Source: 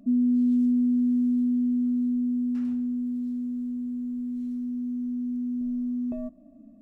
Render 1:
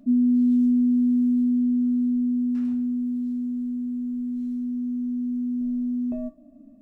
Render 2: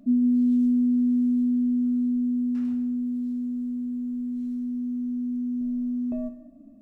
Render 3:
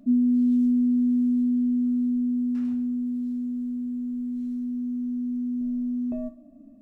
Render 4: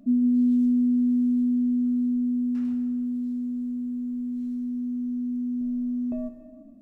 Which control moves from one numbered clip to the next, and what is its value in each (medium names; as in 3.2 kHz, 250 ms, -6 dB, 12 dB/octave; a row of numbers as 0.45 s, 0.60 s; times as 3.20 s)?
gated-style reverb, gate: 90 ms, 270 ms, 150 ms, 500 ms